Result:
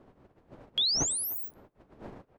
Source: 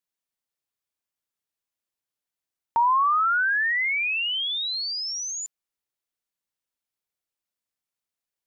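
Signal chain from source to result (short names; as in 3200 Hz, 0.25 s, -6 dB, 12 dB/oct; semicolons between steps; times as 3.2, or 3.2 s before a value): wind noise 150 Hz -41 dBFS; wide varispeed 3.55×; speakerphone echo 0.3 s, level -18 dB; gain -6 dB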